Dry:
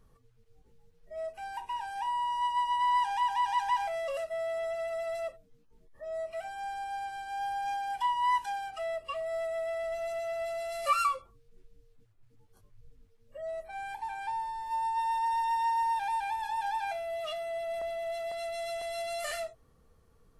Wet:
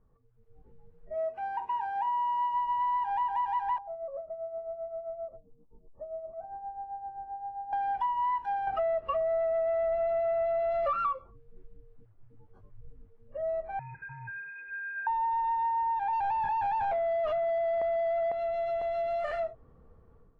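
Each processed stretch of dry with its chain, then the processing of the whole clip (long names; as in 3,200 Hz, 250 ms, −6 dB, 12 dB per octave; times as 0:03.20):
0:01.14–0:02.54: high-pass filter 200 Hz 6 dB per octave + high-shelf EQ 4,700 Hz +3 dB
0:03.78–0:07.73: low-pass filter 1,000 Hz 24 dB per octave + downward compressor 3 to 1, threshold −43 dBFS + amplitude tremolo 7.6 Hz, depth 61%
0:08.67–0:11.13: leveller curve on the samples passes 2 + low-pass filter 3,700 Hz 6 dB per octave
0:13.79–0:15.07: phaser with its sweep stopped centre 1,200 Hz, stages 8 + voice inversion scrambler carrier 2,500 Hz
0:16.13–0:18.32: noise gate −31 dBFS, range −7 dB + high-shelf EQ 3,600 Hz −12 dB + leveller curve on the samples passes 5
whole clip: automatic gain control gain up to 11.5 dB; low-pass filter 1,200 Hz 12 dB per octave; downward compressor, threshold −23 dBFS; level −4.5 dB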